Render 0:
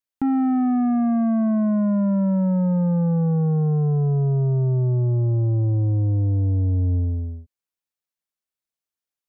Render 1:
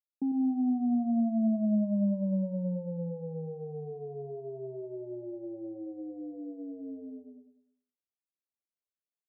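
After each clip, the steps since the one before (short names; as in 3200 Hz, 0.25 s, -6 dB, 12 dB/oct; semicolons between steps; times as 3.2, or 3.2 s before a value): elliptic band-pass 200–670 Hz, stop band 40 dB; feedback echo 99 ms, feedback 44%, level -8.5 dB; gain -8 dB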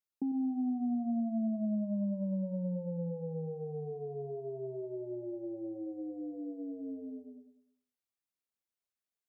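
compressor 2.5:1, threshold -33 dBFS, peak gain reduction 7 dB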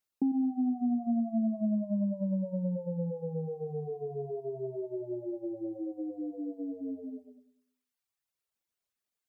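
reverb removal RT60 0.97 s; gain +6 dB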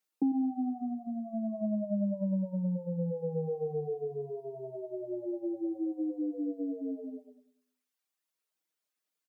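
HPF 170 Hz 24 dB/oct; comb 6.4 ms, depth 58%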